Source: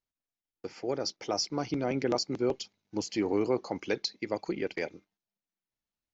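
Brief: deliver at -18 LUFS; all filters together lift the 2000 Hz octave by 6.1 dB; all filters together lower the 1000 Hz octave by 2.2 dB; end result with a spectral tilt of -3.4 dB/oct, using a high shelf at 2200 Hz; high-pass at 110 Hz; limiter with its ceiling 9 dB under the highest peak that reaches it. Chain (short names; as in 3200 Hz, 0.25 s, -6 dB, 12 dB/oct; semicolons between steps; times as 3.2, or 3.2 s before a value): HPF 110 Hz; bell 1000 Hz -5.5 dB; bell 2000 Hz +5.5 dB; high shelf 2200 Hz +5.5 dB; gain +16 dB; limiter -5.5 dBFS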